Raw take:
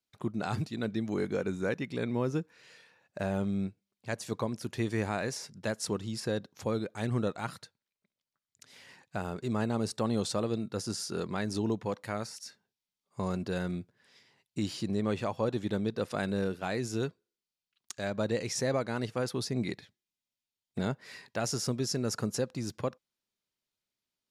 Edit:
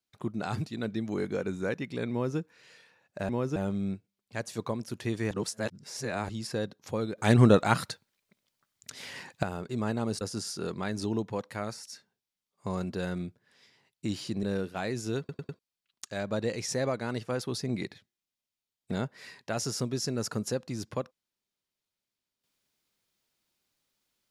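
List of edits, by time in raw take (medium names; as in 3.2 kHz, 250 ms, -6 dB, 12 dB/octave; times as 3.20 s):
2.11–2.38 s: copy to 3.29 s
5.04–6.02 s: reverse
6.91–9.16 s: gain +11.5 dB
9.94–10.74 s: delete
14.96–16.30 s: delete
17.06 s: stutter in place 0.10 s, 4 plays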